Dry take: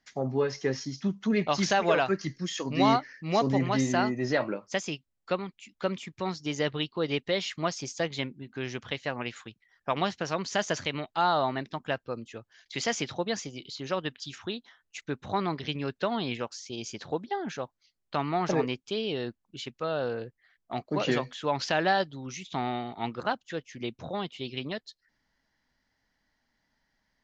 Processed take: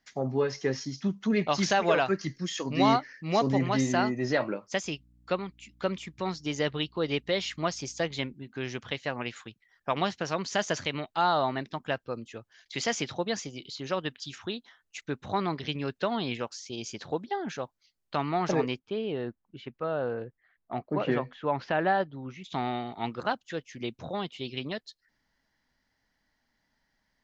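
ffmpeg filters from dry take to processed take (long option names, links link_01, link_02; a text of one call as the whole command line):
ffmpeg -i in.wav -filter_complex "[0:a]asettb=1/sr,asplit=3[link_01][link_02][link_03];[link_01]atrim=end=4.844[link_04];[link_02]atrim=start=4.84:end=8.34,asetpts=PTS-STARTPTS,afade=type=in:duration=0.004:curve=qsin,afade=type=out:start_time=3.496:duration=0.004:curve=qsin,aeval=exprs='val(0)+0.001*(sin(2*PI*60*n/s)+sin(2*PI*2*60*n/s)/2+sin(2*PI*3*60*n/s)/3+sin(2*PI*4*60*n/s)/4+sin(2*PI*5*60*n/s)/5)':channel_layout=same[link_05];[link_03]atrim=start=8.336[link_06];[link_04][link_05]acrossfade=duration=0.004:curve1=hsin:curve2=qsin[link_07];[link_07][link_06]acrossfade=duration=0.004:curve1=qsin:curve2=hsin,asettb=1/sr,asplit=3[link_08][link_09][link_10];[link_08]atrim=end=18.794[link_11];[link_09]atrim=start=18.79:end=22.44,asetpts=PTS-STARTPTS,afade=type=in:duration=0.004:curve=qsin,afade=type=out:start_time=3.646:duration=0.004:curve=qsin,lowpass=1900[link_12];[link_10]atrim=start=22.436[link_13];[link_11][link_12]acrossfade=duration=0.004:curve1=hsin:curve2=qsin[link_14];[link_14][link_13]acrossfade=duration=0.004:curve1=qsin:curve2=hsin" out.wav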